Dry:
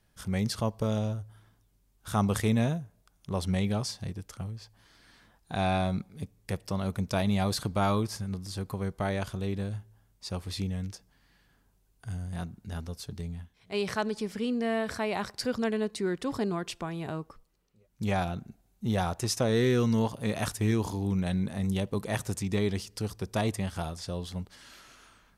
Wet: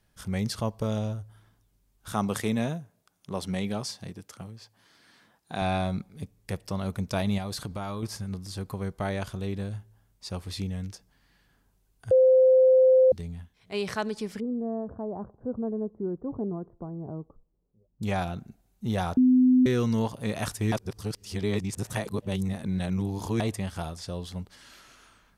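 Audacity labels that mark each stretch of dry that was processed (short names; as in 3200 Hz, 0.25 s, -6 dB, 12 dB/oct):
2.120000	5.620000	HPF 150 Hz
7.380000	8.030000	compressor, threshold -30 dBFS
12.110000	13.120000	bleep 518 Hz -14.5 dBFS
14.400000	18.030000	Gaussian blur sigma 11 samples
19.170000	19.660000	bleep 254 Hz -15.5 dBFS
20.720000	23.400000	reverse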